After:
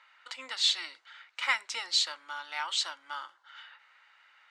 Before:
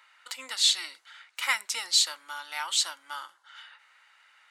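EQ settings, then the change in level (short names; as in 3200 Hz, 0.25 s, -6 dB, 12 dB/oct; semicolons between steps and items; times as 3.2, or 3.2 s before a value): air absorption 110 m; bell 200 Hz -10.5 dB 0.23 oct; 0.0 dB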